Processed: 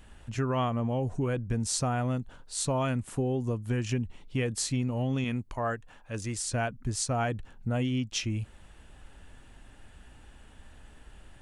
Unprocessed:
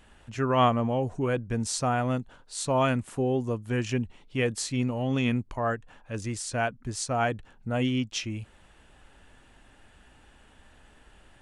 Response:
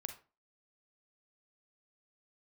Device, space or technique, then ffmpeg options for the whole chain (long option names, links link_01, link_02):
ASMR close-microphone chain: -filter_complex "[0:a]asettb=1/sr,asplit=3[link_01][link_02][link_03];[link_01]atrim=end=5.244[link_04];[link_02]atrim=start=5.24:end=6.38,asetpts=PTS-STARTPTS,afade=type=in:duration=0.004:curve=qsin,afade=type=out:start_time=1.136:duration=0.004:curve=qsin,lowshelf=frequency=320:gain=-7[link_05];[link_03]atrim=start=6.376[link_06];[link_04][link_05]acrossfade=duration=0.004:curve1=hsin:curve2=qsin[link_07];[link_07][link_06]acrossfade=duration=0.004:curve1=qsin:curve2=hsin,lowshelf=frequency=190:gain=8,acompressor=threshold=-24dB:ratio=6,highshelf=frequency=6700:gain=5,volume=-1dB"